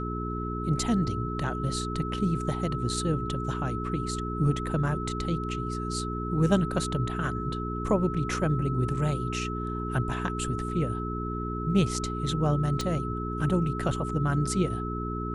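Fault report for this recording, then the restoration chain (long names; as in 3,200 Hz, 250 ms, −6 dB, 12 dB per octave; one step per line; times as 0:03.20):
mains hum 60 Hz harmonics 7 −33 dBFS
whistle 1,300 Hz −35 dBFS
0:12.81: click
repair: click removal
notch filter 1,300 Hz, Q 30
hum removal 60 Hz, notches 7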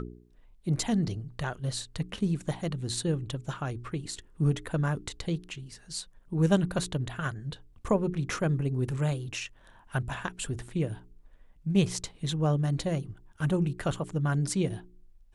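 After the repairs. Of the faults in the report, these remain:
none of them is left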